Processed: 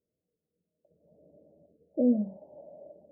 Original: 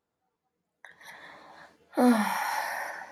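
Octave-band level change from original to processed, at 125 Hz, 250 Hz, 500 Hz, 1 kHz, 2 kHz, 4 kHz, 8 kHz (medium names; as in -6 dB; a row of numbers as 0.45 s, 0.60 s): no reading, -2.0 dB, -2.0 dB, under -25 dB, under -40 dB, under -40 dB, under -35 dB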